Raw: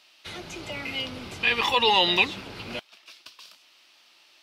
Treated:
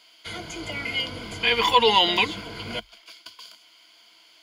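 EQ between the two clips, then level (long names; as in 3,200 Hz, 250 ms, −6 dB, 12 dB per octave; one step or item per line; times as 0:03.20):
EQ curve with evenly spaced ripples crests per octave 1.8, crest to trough 12 dB
+1.5 dB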